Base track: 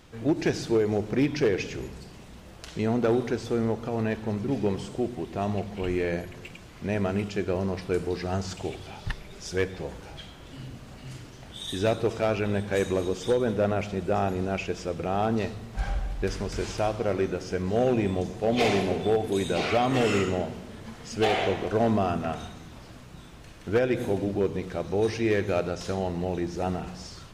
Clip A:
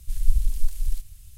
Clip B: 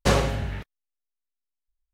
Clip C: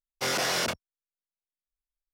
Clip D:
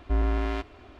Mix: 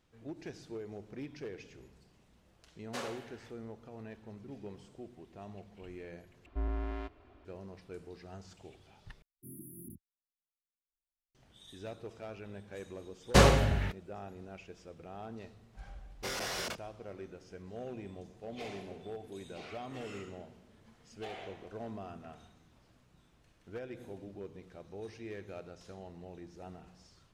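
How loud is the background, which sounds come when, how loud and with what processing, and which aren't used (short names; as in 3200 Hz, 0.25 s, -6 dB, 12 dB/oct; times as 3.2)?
base track -19.5 dB
2.88 add B -16.5 dB + HPF 530 Hz
6.46 replace with D -10 dB + high shelf 2700 Hz -8.5 dB
9.22 replace with C -9.5 dB + brick-wall FIR band-stop 370–9700 Hz
13.29 add B -0.5 dB
16.02 add C -10 dB
not used: A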